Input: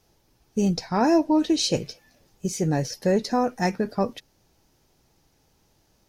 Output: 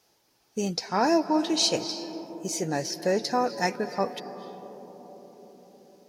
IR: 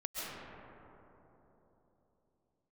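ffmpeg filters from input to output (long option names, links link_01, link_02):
-filter_complex "[0:a]highpass=frequency=520:poles=1,asplit=2[link_01][link_02];[link_02]equalizer=frequency=4800:width=3:gain=11.5[link_03];[1:a]atrim=start_sample=2205,asetrate=23814,aresample=44100,lowshelf=frequency=120:gain=-11[link_04];[link_03][link_04]afir=irnorm=-1:irlink=0,volume=-17.5dB[link_05];[link_01][link_05]amix=inputs=2:normalize=0"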